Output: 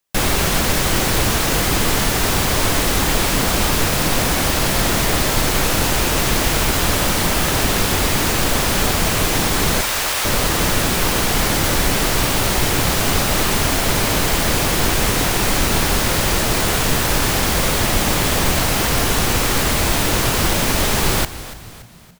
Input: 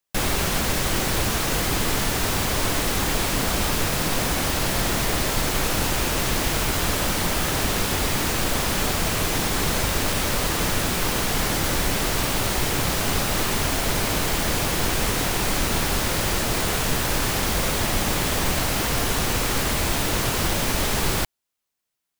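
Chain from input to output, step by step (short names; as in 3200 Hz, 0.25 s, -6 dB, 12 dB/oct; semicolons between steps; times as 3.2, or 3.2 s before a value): 9.81–10.25 HPF 710 Hz 12 dB/oct; frequency-shifting echo 0.286 s, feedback 46%, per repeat -60 Hz, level -15 dB; gain +5.5 dB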